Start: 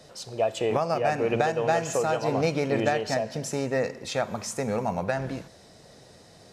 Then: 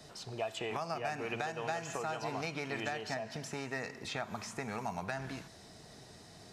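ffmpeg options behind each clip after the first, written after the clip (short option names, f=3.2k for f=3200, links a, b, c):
-filter_complex "[0:a]equalizer=f=530:w=6.7:g=-13.5,acrossover=split=830|3500[a][b][c];[a]acompressor=threshold=-40dB:ratio=4[d];[b]acompressor=threshold=-37dB:ratio=4[e];[c]acompressor=threshold=-49dB:ratio=4[f];[d][e][f]amix=inputs=3:normalize=0,volume=-1.5dB"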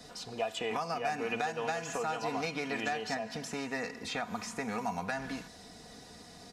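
-af "aecho=1:1:4.1:0.59,volume=2dB"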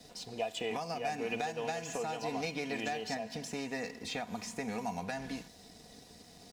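-af "equalizer=f=1.3k:t=o:w=0.74:g=-10.5,aeval=exprs='sgn(val(0))*max(abs(val(0))-0.001,0)':c=same"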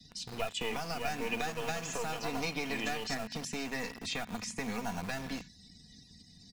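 -filter_complex "[0:a]afftdn=nr=21:nf=-59,acrossover=split=250|1400[a][b][c];[b]acrusher=bits=5:dc=4:mix=0:aa=0.000001[d];[a][d][c]amix=inputs=3:normalize=0,volume=3.5dB"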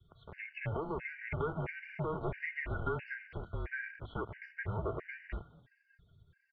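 -filter_complex "[0:a]highpass=f=220:t=q:w=0.5412,highpass=f=220:t=q:w=1.307,lowpass=f=2.5k:t=q:w=0.5176,lowpass=f=2.5k:t=q:w=0.7071,lowpass=f=2.5k:t=q:w=1.932,afreqshift=-320,asplit=3[a][b][c];[b]adelay=210,afreqshift=110,volume=-23dB[d];[c]adelay=420,afreqshift=220,volume=-32.9dB[e];[a][d][e]amix=inputs=3:normalize=0,afftfilt=real='re*gt(sin(2*PI*1.5*pts/sr)*(1-2*mod(floor(b*sr/1024/1500),2)),0)':imag='im*gt(sin(2*PI*1.5*pts/sr)*(1-2*mod(floor(b*sr/1024/1500),2)),0)':win_size=1024:overlap=0.75,volume=2.5dB"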